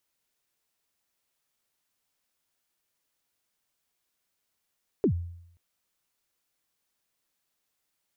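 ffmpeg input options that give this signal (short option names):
-f lavfi -i "aevalsrc='0.133*pow(10,-3*t/0.74)*sin(2*PI*(460*0.086/log(86/460)*(exp(log(86/460)*min(t,0.086)/0.086)-1)+86*max(t-0.086,0)))':d=0.53:s=44100"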